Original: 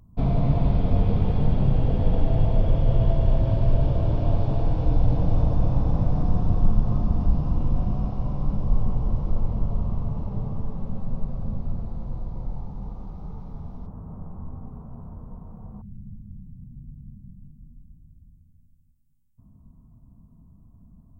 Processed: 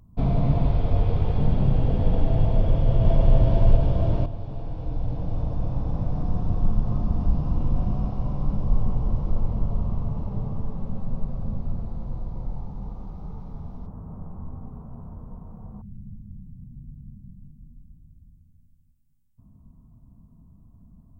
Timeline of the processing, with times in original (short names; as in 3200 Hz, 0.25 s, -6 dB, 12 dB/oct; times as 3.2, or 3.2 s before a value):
0.66–1.36 bell 210 Hz -10.5 dB 0.55 oct
2.58–3.3 echo throw 0.46 s, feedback 45%, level -2 dB
4.26–7.87 fade in, from -12 dB